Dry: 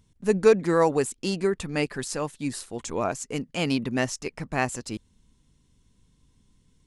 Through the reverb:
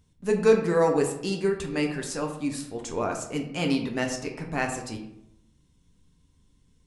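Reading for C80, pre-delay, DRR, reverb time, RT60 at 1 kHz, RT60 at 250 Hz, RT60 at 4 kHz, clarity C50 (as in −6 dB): 10.0 dB, 5 ms, 2.0 dB, 0.80 s, 0.75 s, 0.95 s, 0.45 s, 7.5 dB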